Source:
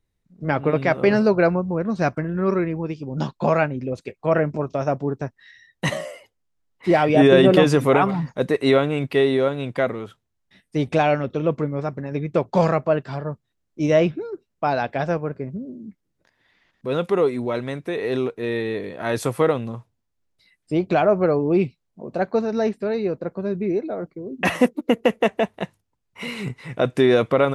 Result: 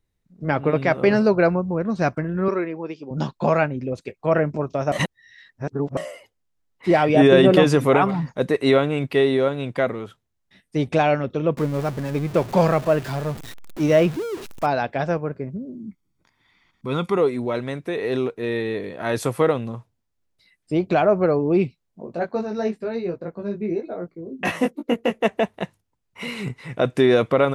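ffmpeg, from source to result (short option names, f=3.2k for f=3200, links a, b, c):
-filter_complex "[0:a]asettb=1/sr,asplit=3[a][b][c];[a]atrim=end=2.484[d];[b]atrim=start=2.48:end=3.11,asetpts=PTS-STARTPTS,afade=t=in:d=0.004:c=qsin,afade=t=out:st=0.626:d=0.004:c=qsin,highpass=310,lowpass=5.8k[e];[c]atrim=start=3.106[f];[d][e]acrossfade=d=0.004:c1=hsin:c2=qsin[g];[g][f]acrossfade=d=0.004:c1=qsin:c2=hsin,asettb=1/sr,asplit=3[h][i][j];[h]atrim=end=11.574[k];[i]atrim=start=11.57:end=14.66,asetpts=PTS-STARTPTS,afade=t=in:d=0.004:c=qsin,afade=t=out:st=3.086:d=0.004:c=qsin,aeval=exprs='val(0)+0.5*0.0316*sgn(val(0))':c=same[l];[j]atrim=start=14.656[m];[k][l]acrossfade=d=0.004:c1=hsin:c2=qsin[n];[n][m]acrossfade=d=0.004:c1=qsin:c2=hsin,asettb=1/sr,asplit=3[o][p][q];[o]atrim=end=15.744[r];[p]atrim=start=15.74:end=17.17,asetpts=PTS-STARTPTS,afade=t=in:d=0.004:c=qsin,afade=t=out:st=1.426:d=0.004:c=qsin,aecho=1:1:0.9:0.58,atrim=end_sample=63063[s];[q]atrim=start=17.166[t];[r][s]acrossfade=d=0.004:c1=hsin:c2=qsin[u];[u][t]acrossfade=d=0.004:c1=qsin:c2=hsin,asplit=3[v][w][x];[v]afade=t=out:st=22.05:d=0.02[y];[w]flanger=delay=17:depth=2.3:speed=1,afade=t=in:st=22.05:d=0.02,afade=t=out:st=25.23:d=0.02[z];[x]afade=t=in:st=25.23:d=0.02[aa];[y][z][aa]amix=inputs=3:normalize=0,asplit=3[ab][ac][ad];[ab]atrim=end=4.922[ae];[ac]atrim=start=4.918:end=5.972,asetpts=PTS-STARTPTS,areverse[af];[ad]atrim=start=5.968[ag];[ae][af]acrossfade=d=0.004:c1=hsin:c2=hsin[ah];[ah][ag]acrossfade=d=0.004:c1=hsin:c2=hsin"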